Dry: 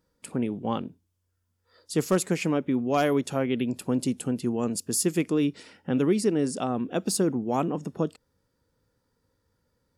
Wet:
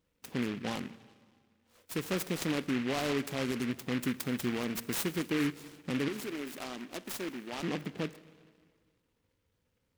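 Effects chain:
0:04.20–0:04.65: high-shelf EQ 2,300 Hz +10.5 dB
brickwall limiter −18 dBFS, peak gain reduction 6 dB
0:06.08–0:07.63: loudspeaker in its box 380–6,900 Hz, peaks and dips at 480 Hz −10 dB, 750 Hz −6 dB, 2,000 Hz −8 dB
dense smooth reverb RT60 1.9 s, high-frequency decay 0.85×, DRR 15 dB
short delay modulated by noise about 1,900 Hz, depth 0.16 ms
level −5 dB

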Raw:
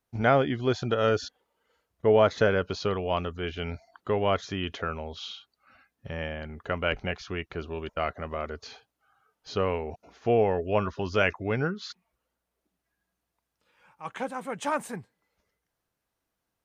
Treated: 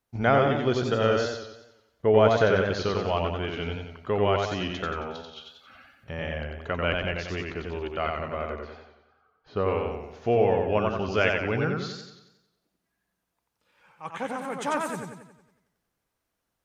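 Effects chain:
0:05.15–0:06.09: compressor whose output falls as the input rises −47 dBFS, ratio −0.5
0:08.52–0:09.68: low-pass filter 1,800 Hz 12 dB per octave
feedback echo with a swinging delay time 91 ms, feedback 51%, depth 84 cents, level −3.5 dB

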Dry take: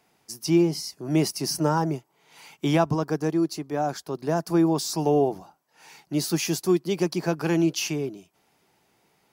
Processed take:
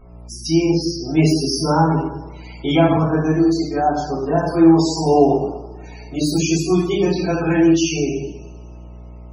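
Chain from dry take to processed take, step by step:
hum with harmonics 60 Hz, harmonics 22, −47 dBFS −6 dB per octave
coupled-rooms reverb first 0.9 s, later 3.5 s, from −26 dB, DRR −10 dB
spectral peaks only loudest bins 64
level −2.5 dB

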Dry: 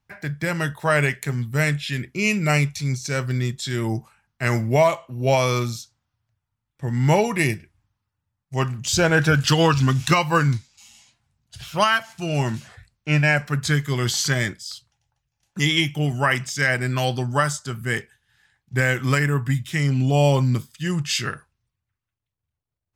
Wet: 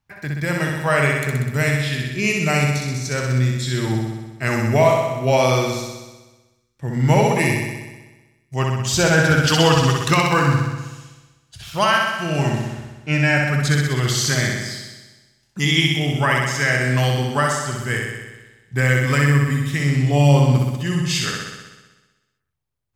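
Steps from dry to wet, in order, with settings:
0:09.50–0:09.93: parametric band 8,400 Hz +6 dB 2.1 octaves
flutter between parallel walls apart 10.8 metres, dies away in 1.2 s

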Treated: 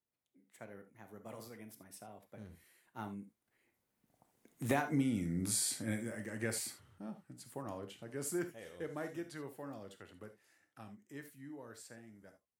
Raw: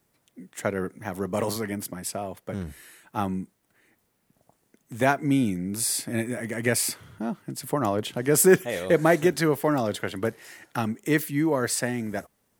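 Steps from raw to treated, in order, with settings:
source passing by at 0:04.94, 21 m/s, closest 3.4 metres
downward compressor 20 to 1, threshold −34 dBFS, peak gain reduction 16 dB
reverb whose tail is shaped and stops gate 100 ms flat, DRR 7.5 dB
level +4.5 dB

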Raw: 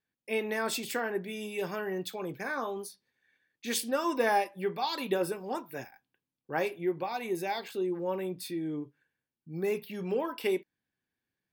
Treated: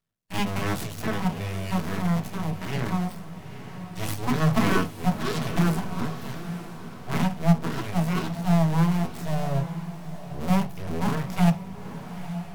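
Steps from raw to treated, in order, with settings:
sub-harmonics by changed cycles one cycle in 2, muted
harmonic and percussive parts rebalanced harmonic +6 dB
full-wave rectification
tape wow and flutter 26 cents
wrong playback speed 48 kHz file played as 44.1 kHz
feedback delay with all-pass diffusion 897 ms, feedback 40%, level −11 dB
on a send at −5 dB: convolution reverb RT60 0.20 s, pre-delay 3 ms
on the sum: level +1.5 dB

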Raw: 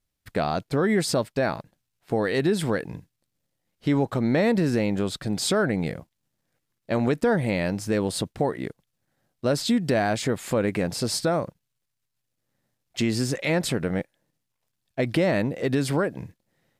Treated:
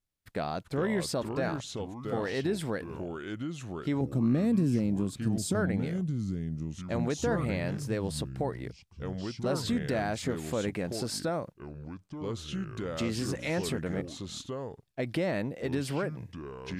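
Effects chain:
0:04.01–0:05.55: octave-band graphic EQ 125/250/500/1,000/2,000/4,000/8,000 Hz +6/+6/−4/−9/−9/−6/+3 dB
delay with pitch and tempo change per echo 319 ms, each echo −4 semitones, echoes 2, each echo −6 dB
level −8 dB

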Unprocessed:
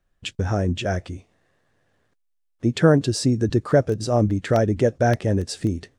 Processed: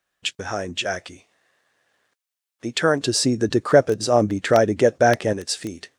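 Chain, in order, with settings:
high-pass filter 1,300 Hz 6 dB per octave, from 0:03.03 480 Hz, from 0:05.33 1,300 Hz
level +6.5 dB

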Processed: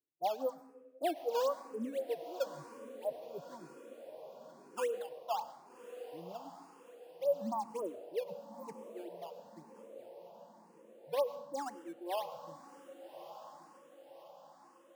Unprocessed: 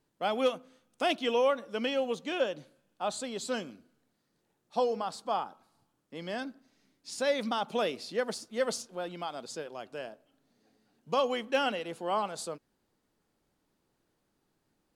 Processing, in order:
low-pass that shuts in the quiet parts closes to 470 Hz, open at −26 dBFS
Butterworth low-pass 1,100 Hz 96 dB per octave
reverb reduction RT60 1.7 s
high-pass filter 150 Hz
noise reduction from a noise print of the clip's start 15 dB
0:02.46–0:03.48: tilt shelving filter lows +6.5 dB, about 720 Hz
in parallel at −3 dB: sample-and-hold swept by an LFO 13×, swing 160% 3.8 Hz
on the sum: feedback delay with all-pass diffusion 1,199 ms, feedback 51%, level −12 dB
on a send at −13.5 dB: convolution reverb RT60 1.2 s, pre-delay 91 ms
on the sum: frequency shifter mixed with the dry sound +1 Hz
level −5 dB

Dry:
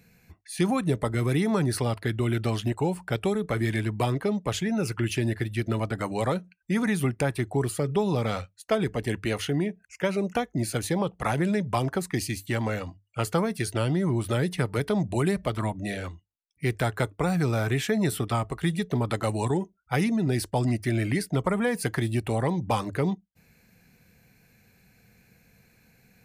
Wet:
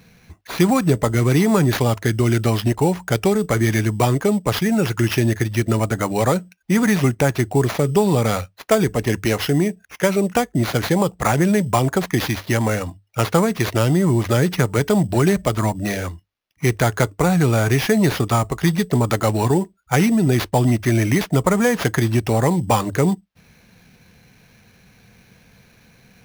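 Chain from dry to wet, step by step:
sample-rate reduction 8,200 Hz, jitter 0%
level +8.5 dB

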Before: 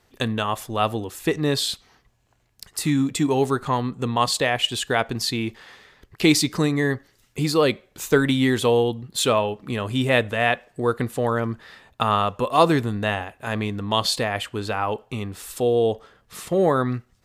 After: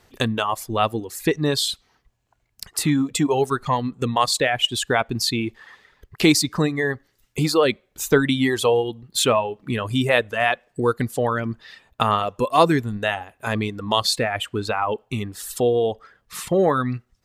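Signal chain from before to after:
reverb reduction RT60 1.5 s
in parallel at −1.5 dB: downward compressor, threshold −29 dBFS, peak gain reduction 17 dB

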